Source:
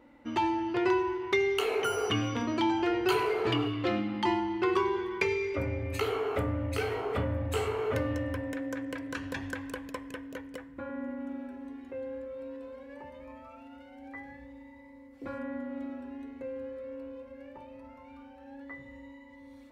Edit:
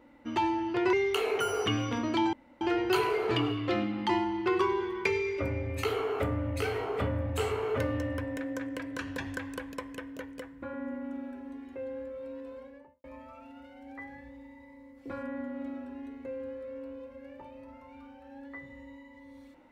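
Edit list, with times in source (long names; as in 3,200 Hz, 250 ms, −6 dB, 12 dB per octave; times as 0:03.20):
0:00.93–0:01.37: remove
0:02.77: splice in room tone 0.28 s
0:12.72–0:13.20: fade out and dull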